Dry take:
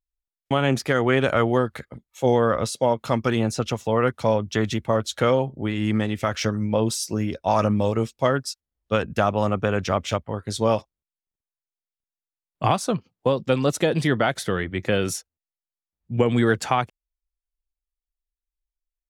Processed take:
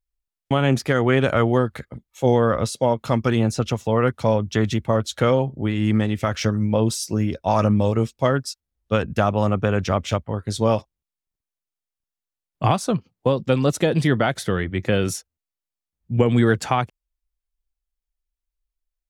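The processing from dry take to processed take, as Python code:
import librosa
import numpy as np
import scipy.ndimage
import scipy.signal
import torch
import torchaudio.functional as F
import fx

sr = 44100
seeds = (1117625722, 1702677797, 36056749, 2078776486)

y = fx.low_shelf(x, sr, hz=220.0, db=6.0)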